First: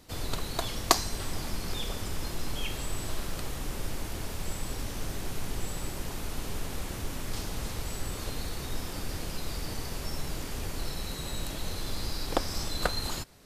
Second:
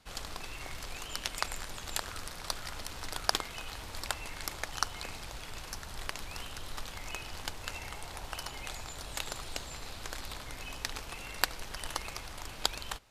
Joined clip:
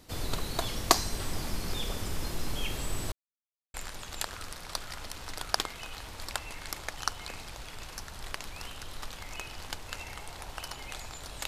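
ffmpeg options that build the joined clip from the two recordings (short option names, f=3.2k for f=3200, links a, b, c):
-filter_complex "[0:a]apad=whole_dur=11.47,atrim=end=11.47,asplit=2[a][b];[a]atrim=end=3.12,asetpts=PTS-STARTPTS,afade=t=out:st=3.116:d=0.004:c=hsin[c];[b]atrim=start=3.12:end=3.74,asetpts=PTS-STARTPTS,volume=0[d];[1:a]atrim=start=1.49:end=9.22,asetpts=PTS-STARTPTS,afade=t=in:d=0.004:c=hsin[e];[c][d][e]concat=n=3:v=0:a=1"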